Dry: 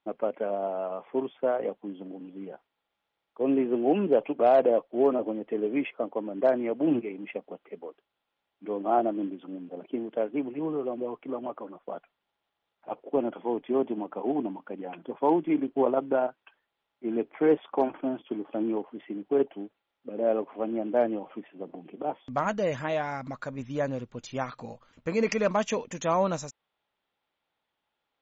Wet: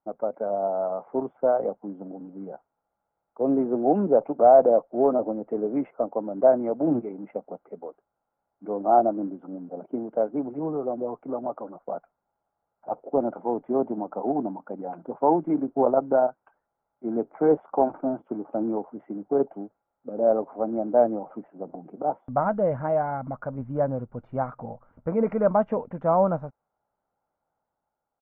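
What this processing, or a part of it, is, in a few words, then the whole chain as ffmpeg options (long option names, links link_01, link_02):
action camera in a waterproof case: -af "lowpass=frequency=1200:width=0.5412,lowpass=frequency=1200:width=1.3066,aecho=1:1:1.4:0.34,dynaudnorm=framelen=100:gausssize=11:maxgain=4dB" -ar 44100 -c:a aac -b:a 96k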